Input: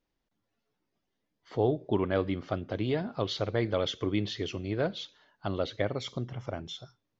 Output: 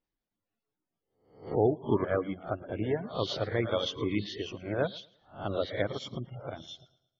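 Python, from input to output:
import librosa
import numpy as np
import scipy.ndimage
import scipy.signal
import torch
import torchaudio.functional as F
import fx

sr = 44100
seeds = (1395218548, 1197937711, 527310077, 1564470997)

y = fx.spec_swells(x, sr, rise_s=0.59)
y = fx.peak_eq(y, sr, hz=3300.0, db=-4.0, octaves=1.8, at=(1.79, 3.11))
y = fx.echo_feedback(y, sr, ms=111, feedback_pct=42, wet_db=-8)
y = fx.spec_gate(y, sr, threshold_db=-30, keep='strong')
y = fx.high_shelf(y, sr, hz=5300.0, db=-9.5, at=(5.0, 5.48))
y = fx.dereverb_blind(y, sr, rt60_s=1.0)
y = fx.upward_expand(y, sr, threshold_db=-43.0, expansion=1.5)
y = y * librosa.db_to_amplitude(1.5)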